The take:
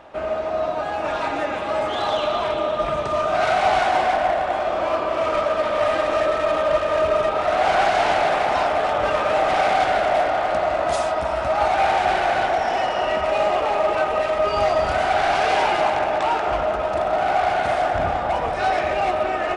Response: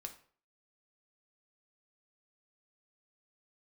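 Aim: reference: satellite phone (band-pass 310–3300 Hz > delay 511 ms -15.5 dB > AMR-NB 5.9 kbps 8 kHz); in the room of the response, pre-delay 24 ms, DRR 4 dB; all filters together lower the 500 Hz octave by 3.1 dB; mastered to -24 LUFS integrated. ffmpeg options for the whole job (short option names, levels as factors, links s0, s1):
-filter_complex "[0:a]equalizer=f=500:t=o:g=-4,asplit=2[s0][s1];[1:a]atrim=start_sample=2205,adelay=24[s2];[s1][s2]afir=irnorm=-1:irlink=0,volume=1[s3];[s0][s3]amix=inputs=2:normalize=0,highpass=310,lowpass=3300,aecho=1:1:511:0.168" -ar 8000 -c:a libopencore_amrnb -b:a 5900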